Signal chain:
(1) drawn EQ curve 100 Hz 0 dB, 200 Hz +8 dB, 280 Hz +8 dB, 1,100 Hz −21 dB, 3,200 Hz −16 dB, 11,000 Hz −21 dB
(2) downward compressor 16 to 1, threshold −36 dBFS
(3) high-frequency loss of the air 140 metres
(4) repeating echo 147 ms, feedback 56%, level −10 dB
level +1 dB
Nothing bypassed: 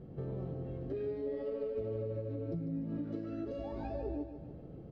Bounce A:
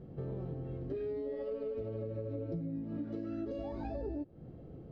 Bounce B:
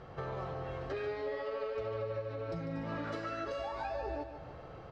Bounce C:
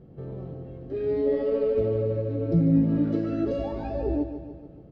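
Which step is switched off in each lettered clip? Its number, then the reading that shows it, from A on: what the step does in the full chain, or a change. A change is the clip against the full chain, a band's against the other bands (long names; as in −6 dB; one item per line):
4, echo-to-direct ratio −8.5 dB to none audible
1, 2 kHz band +17.5 dB
2, average gain reduction 9.0 dB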